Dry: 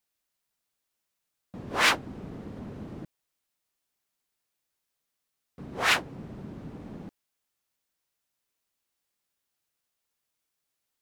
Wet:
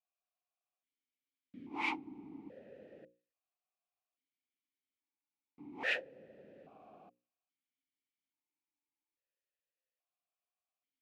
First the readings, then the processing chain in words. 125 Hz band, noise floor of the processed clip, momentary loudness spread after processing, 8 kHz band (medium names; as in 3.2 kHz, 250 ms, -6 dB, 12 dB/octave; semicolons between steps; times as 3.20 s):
-23.0 dB, under -85 dBFS, 23 LU, under -25 dB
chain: hum notches 60/120/180/240/300/360/420/480/540 Hz; stepped vowel filter 1.2 Hz; trim +1 dB